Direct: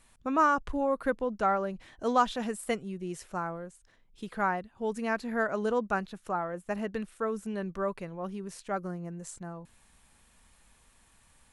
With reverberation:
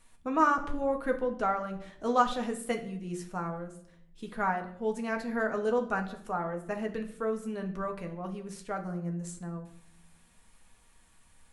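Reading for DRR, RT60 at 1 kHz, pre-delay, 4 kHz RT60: 3.0 dB, 0.60 s, 4 ms, 0.45 s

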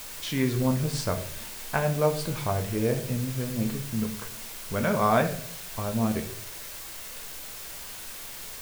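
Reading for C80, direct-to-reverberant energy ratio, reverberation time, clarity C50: 14.0 dB, 5.0 dB, 0.65 s, 10.5 dB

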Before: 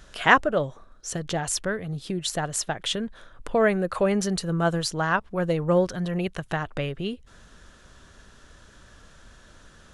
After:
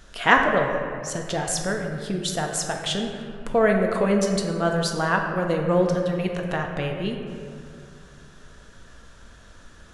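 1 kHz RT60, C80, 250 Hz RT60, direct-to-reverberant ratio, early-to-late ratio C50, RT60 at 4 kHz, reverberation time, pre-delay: 2.2 s, 5.0 dB, 2.8 s, 2.0 dB, 4.0 dB, 1.3 s, 2.5 s, 4 ms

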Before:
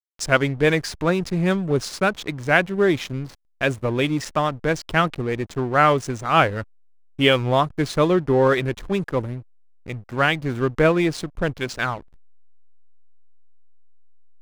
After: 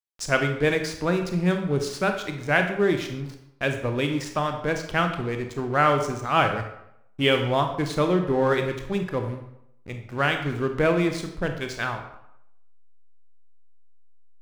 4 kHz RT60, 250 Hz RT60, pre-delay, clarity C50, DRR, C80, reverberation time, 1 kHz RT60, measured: 0.55 s, 0.75 s, 24 ms, 7.5 dB, 5.0 dB, 10.0 dB, 0.80 s, 0.80 s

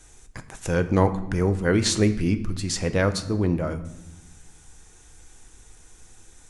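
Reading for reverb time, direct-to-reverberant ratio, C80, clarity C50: 0.95 s, 9.0 dB, 15.5 dB, 13.5 dB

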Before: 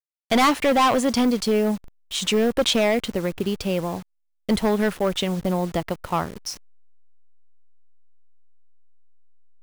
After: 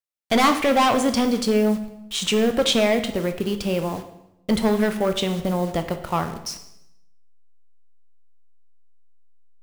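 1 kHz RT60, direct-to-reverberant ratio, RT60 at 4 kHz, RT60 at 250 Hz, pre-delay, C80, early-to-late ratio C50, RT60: 0.80 s, 7.5 dB, 0.75 s, 0.90 s, 13 ms, 13.5 dB, 10.5 dB, 0.85 s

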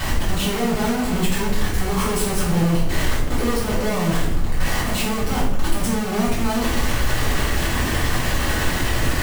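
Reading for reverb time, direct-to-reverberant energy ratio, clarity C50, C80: 0.80 s, −9.0 dB, 2.5 dB, 6.5 dB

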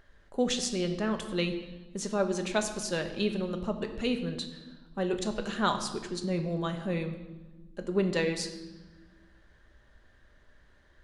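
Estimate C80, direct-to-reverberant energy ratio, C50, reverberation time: 11.5 dB, 5.5 dB, 9.5 dB, 1.2 s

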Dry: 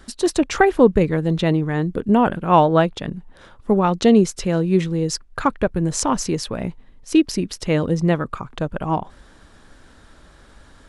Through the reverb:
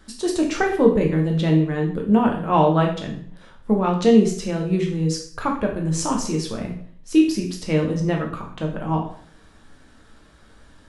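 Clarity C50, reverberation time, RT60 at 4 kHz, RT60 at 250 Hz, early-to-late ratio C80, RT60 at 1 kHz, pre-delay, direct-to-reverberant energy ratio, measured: 6.5 dB, 0.55 s, 0.50 s, 0.60 s, 11.0 dB, 0.55 s, 7 ms, 0.0 dB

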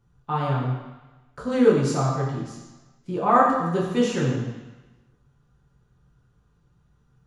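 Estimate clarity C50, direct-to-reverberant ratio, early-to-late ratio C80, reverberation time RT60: 2.0 dB, −5.0 dB, 4.0 dB, 1.1 s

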